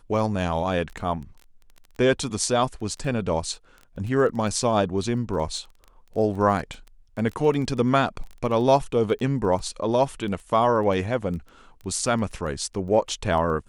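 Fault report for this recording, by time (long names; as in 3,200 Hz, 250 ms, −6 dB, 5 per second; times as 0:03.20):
surface crackle 13 per second −32 dBFS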